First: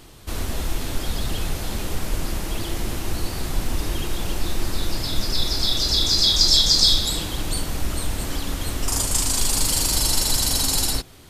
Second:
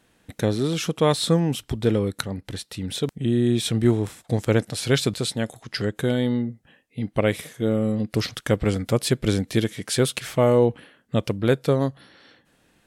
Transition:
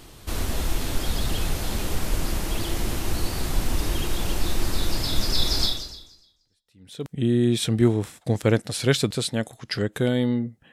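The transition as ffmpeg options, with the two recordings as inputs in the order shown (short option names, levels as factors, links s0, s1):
-filter_complex "[0:a]apad=whole_dur=10.72,atrim=end=10.72,atrim=end=7.12,asetpts=PTS-STARTPTS[s0];[1:a]atrim=start=1.67:end=6.75,asetpts=PTS-STARTPTS[s1];[s0][s1]acrossfade=d=1.48:c1=exp:c2=exp"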